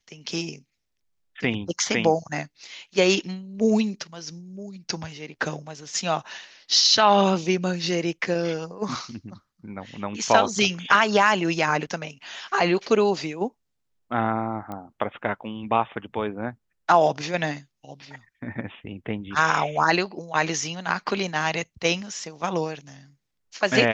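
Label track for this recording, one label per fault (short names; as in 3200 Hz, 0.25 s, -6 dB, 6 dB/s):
14.720000	14.720000	pop -21 dBFS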